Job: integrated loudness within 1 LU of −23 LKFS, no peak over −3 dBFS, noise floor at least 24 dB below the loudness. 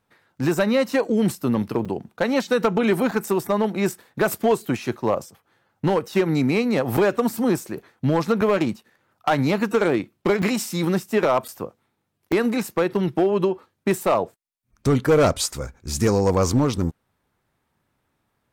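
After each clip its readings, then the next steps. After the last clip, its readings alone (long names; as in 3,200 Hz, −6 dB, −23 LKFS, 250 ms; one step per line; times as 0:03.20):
share of clipped samples 1.0%; peaks flattened at −12.0 dBFS; number of dropouts 7; longest dropout 5.2 ms; integrated loudness −22.0 LKFS; sample peak −12.0 dBFS; target loudness −23.0 LKFS
→ clipped peaks rebuilt −12 dBFS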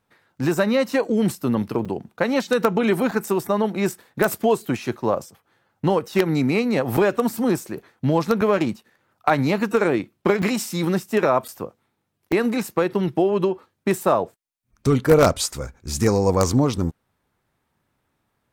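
share of clipped samples 0.0%; number of dropouts 7; longest dropout 5.2 ms
→ repair the gap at 0:01.85/0:03.11/0:06.97/0:08.41/0:10.42/0:11.48/0:12.32, 5.2 ms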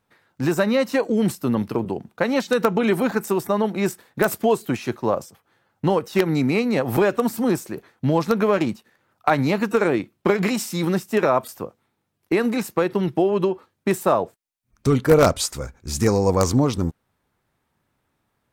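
number of dropouts 0; integrated loudness −21.5 LKFS; sample peak −3.0 dBFS; target loudness −23.0 LKFS
→ level −1.5 dB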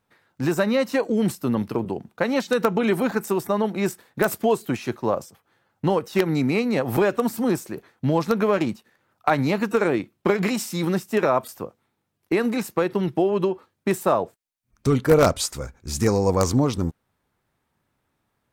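integrated loudness −23.0 LKFS; sample peak −4.5 dBFS; background noise floor −75 dBFS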